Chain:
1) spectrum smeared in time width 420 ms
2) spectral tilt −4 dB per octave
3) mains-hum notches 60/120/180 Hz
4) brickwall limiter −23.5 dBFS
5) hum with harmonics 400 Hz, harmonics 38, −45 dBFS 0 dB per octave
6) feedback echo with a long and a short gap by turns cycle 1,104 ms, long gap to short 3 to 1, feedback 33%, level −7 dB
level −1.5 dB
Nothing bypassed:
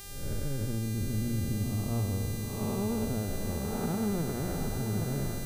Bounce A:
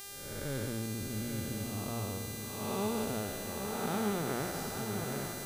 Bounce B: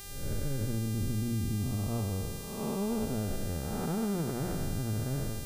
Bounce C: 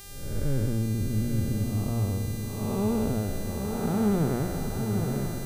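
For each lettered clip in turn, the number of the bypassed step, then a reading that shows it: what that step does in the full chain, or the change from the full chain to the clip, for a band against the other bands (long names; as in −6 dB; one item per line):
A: 2, 125 Hz band −9.5 dB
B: 6, echo-to-direct ratio −5.5 dB to none audible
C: 4, average gain reduction 3.0 dB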